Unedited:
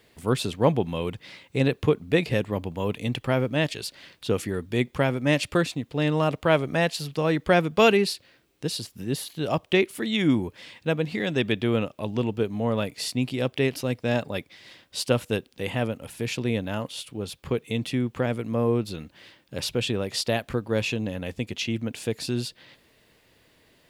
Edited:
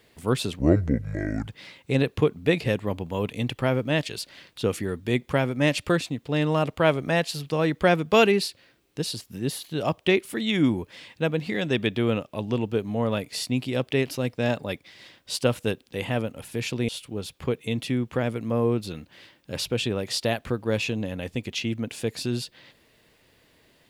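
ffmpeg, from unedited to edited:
-filter_complex "[0:a]asplit=4[a][b][c][d];[a]atrim=end=0.594[e];[b]atrim=start=0.59:end=1.13,asetpts=PTS-STARTPTS,asetrate=26901,aresample=44100,atrim=end_sample=39039,asetpts=PTS-STARTPTS[f];[c]atrim=start=1.126:end=16.542[g];[d]atrim=start=16.918[h];[e][f]acrossfade=d=0.004:c1=hsin:c2=hsin[i];[i][g]acrossfade=d=0.004:c1=hsin:c2=hsin[j];[j][h]acrossfade=d=0.004:c1=hsin:c2=hsin"

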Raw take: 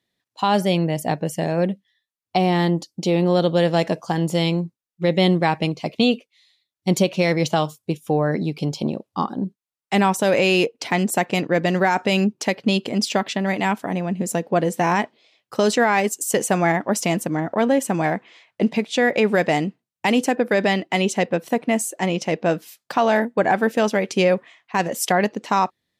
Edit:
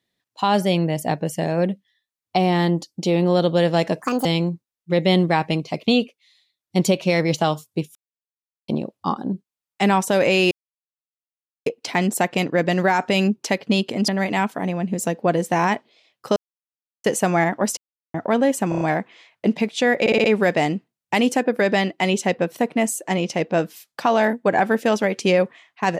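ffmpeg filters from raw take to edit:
-filter_complex "[0:a]asplit=19[a][b][c][d][e][f][g][h][i][j][k][l][m][n][o][p][q][r][s];[a]atrim=end=4.024[t];[b]atrim=start=4.02:end=4.37,asetpts=PTS-STARTPTS,asetrate=66591,aresample=44100[u];[c]atrim=start=4.366:end=8.07,asetpts=PTS-STARTPTS,afade=t=out:st=3.7:d=0.004:c=hsin[v];[d]atrim=start=8.07:end=8.8,asetpts=PTS-STARTPTS,volume=0[w];[e]atrim=start=8.8:end=10.63,asetpts=PTS-STARTPTS,afade=t=in:d=0.004:c=hsin,afade=t=out:st=1.826:d=0.004:c=hsin,apad=pad_dur=1.15[x];[f]atrim=start=10.63:end=13.052,asetpts=PTS-STARTPTS,afade=t=in:d=0.004:c=hsin[y];[g]atrim=start=13.358:end=15.64,asetpts=PTS-STARTPTS,afade=t=out:st=2.278:d=0.004:c=hsin[z];[h]atrim=start=15.64:end=16.32,asetpts=PTS-STARTPTS,volume=0[aa];[i]atrim=start=16.32:end=17.05,asetpts=PTS-STARTPTS,afade=t=in:d=0.004:c=hsin,afade=t=out:st=0.726:d=0.004:c=hsin[ab];[j]atrim=start=17.05:end=17.42,asetpts=PTS-STARTPTS,volume=0[ac];[k]atrim=start=17.42:end=18.002,asetpts=PTS-STARTPTS,afade=t=in:d=0.004:c=hsin[ad];[l]atrim=start=17.968:end=18.002[ae];[m]atrim=start=17.968:end=18.002[af];[n]atrim=start=17.968:end=18.002[ag];[o]atrim=start=17.968:end=19.222[ah];[p]atrim=start=19.158:end=19.222[ai];[q]atrim=start=19.158:end=19.222[aj];[r]atrim=start=19.158:end=19.222[ak];[s]atrim=start=19.158[al];[t][u]acrossfade=d=0.004:c1=hsin:c2=hsin[am];[v][w][x][y]concat=n=4:v=0:a=1[an];[am][an]acrossfade=d=0.004:c1=hsin:c2=hsin[ao];[z][aa][ab][ac][ad]concat=n=5:v=0:a=1[ap];[ao][ap]acrossfade=d=0.004:c1=hsin:c2=hsin[aq];[aq][ae]acrossfade=d=0.004:c1=hsin:c2=hsin[ar];[ar][af]acrossfade=d=0.004:c1=hsin:c2=hsin[as];[as][ag]acrossfade=d=0.004:c1=hsin:c2=hsin[at];[at][ah]acrossfade=d=0.004:c1=hsin:c2=hsin[au];[au][ai]acrossfade=d=0.004:c1=hsin:c2=hsin[av];[av][aj]acrossfade=d=0.004:c1=hsin:c2=hsin[aw];[aw][ak]acrossfade=d=0.004:c1=hsin:c2=hsin[ax];[ax][al]acrossfade=d=0.004:c1=hsin:c2=hsin"

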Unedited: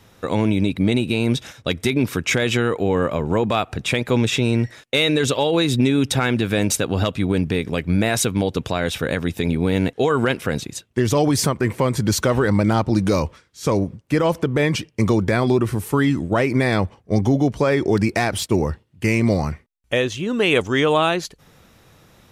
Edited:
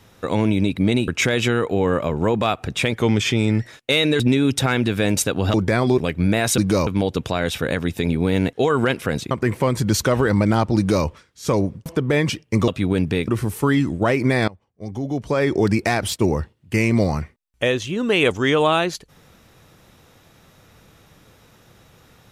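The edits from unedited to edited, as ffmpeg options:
-filter_complex "[0:a]asplit=14[a][b][c][d][e][f][g][h][i][j][k][l][m][n];[a]atrim=end=1.082[o];[b]atrim=start=2.168:end=4.014[p];[c]atrim=start=4.01:end=4.65,asetpts=PTS-STARTPTS,asetrate=41013,aresample=44100,atrim=end_sample=30348,asetpts=PTS-STARTPTS[q];[d]atrim=start=4.646:end=5.242[r];[e]atrim=start=5.728:end=7.072[s];[f]atrim=start=15.138:end=15.582[t];[g]atrim=start=7.668:end=8.272[u];[h]atrim=start=12.948:end=13.242[v];[i]atrim=start=8.268:end=10.712[w];[j]atrim=start=11.488:end=14.042[x];[k]atrim=start=14.318:end=15.142[y];[l]atrim=start=7.068:end=7.672[z];[m]atrim=start=15.578:end=16.78,asetpts=PTS-STARTPTS,afade=t=out:st=1.198:d=0.004:c=hsin:silence=0.0749894[aa];[n]atrim=start=16.78,asetpts=PTS-STARTPTS,afade=t=in:d=1:c=qua:silence=0.0749894[ab];[o][p]acrossfade=d=0.004:c1=hsin:c2=hsin[ac];[ac][q]acrossfade=d=0.004:c1=hsin:c2=hsin[ad];[ad][r]acrossfade=d=0.004:c1=hsin:c2=hsin[ae];[ae][s]acrossfade=d=0.004:c1=hsin:c2=hsin[af];[af][t]acrossfade=d=0.004:c1=hsin:c2=hsin[ag];[ag][u]acrossfade=d=0.004:c1=hsin:c2=hsin[ah];[ah][v]acrossfade=d=0.004:c1=hsin:c2=hsin[ai];[ai][w]acrossfade=d=0.004:c1=hsin:c2=hsin[aj];[aj][x]acrossfade=d=0.004:c1=hsin:c2=hsin[ak];[ak][y]acrossfade=d=0.004:c1=hsin:c2=hsin[al];[al][z]acrossfade=d=0.004:c1=hsin:c2=hsin[am];[aa][ab]concat=n=2:v=0:a=1[an];[am][an]acrossfade=d=0.004:c1=hsin:c2=hsin"

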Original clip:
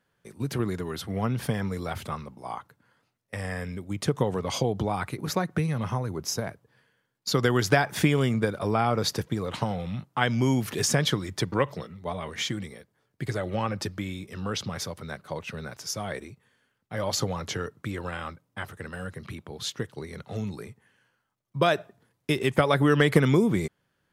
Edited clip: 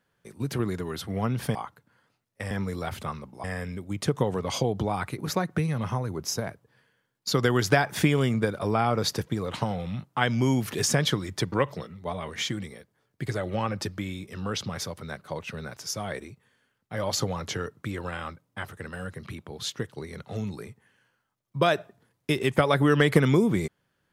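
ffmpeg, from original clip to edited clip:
-filter_complex "[0:a]asplit=4[a][b][c][d];[a]atrim=end=1.552[e];[b]atrim=start=2.478:end=3.442[f];[c]atrim=start=1.548:end=2.482[g];[d]atrim=start=3.438[h];[e][f]acrossfade=d=0.004:c1=hsin:c2=hsin[i];[i][g]acrossfade=d=0.004:c1=hsin:c2=hsin[j];[j][h]acrossfade=d=0.004:c1=hsin:c2=hsin"

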